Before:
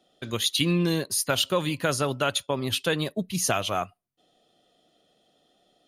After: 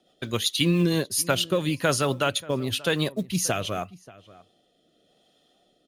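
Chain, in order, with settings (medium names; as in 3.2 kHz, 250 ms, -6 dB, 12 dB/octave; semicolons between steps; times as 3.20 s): short-mantissa float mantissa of 4-bit; rotary cabinet horn 7.5 Hz, later 0.9 Hz, at 0.55 s; echo from a far wall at 100 m, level -20 dB; trim +3.5 dB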